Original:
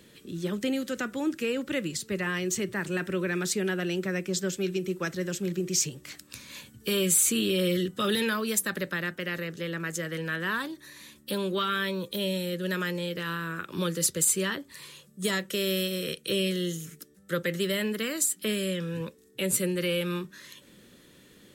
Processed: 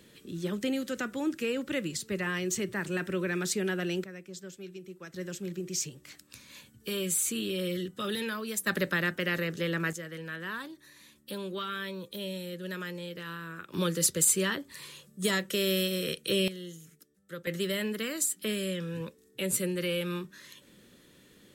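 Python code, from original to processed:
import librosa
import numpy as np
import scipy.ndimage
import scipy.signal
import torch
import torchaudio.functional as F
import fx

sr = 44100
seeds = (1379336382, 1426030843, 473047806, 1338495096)

y = fx.gain(x, sr, db=fx.steps((0.0, -2.0), (4.04, -14.5), (5.14, -6.5), (8.67, 2.5), (9.93, -7.5), (13.74, 0.0), (16.48, -12.0), (17.47, -3.0)))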